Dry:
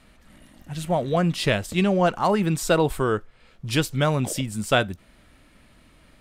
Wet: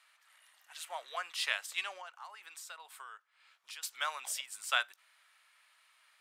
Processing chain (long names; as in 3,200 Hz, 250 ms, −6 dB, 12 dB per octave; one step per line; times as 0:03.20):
high-pass filter 1,000 Hz 24 dB per octave
0:01.97–0:03.83: downward compressor 5 to 1, threshold −41 dBFS, peak gain reduction 17 dB
level −6.5 dB